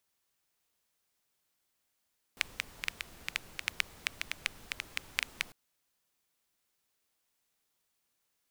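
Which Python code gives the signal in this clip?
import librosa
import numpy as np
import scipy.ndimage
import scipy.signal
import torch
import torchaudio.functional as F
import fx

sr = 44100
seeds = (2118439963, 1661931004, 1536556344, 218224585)

y = fx.rain(sr, seeds[0], length_s=3.15, drops_per_s=6.4, hz=2300.0, bed_db=-13)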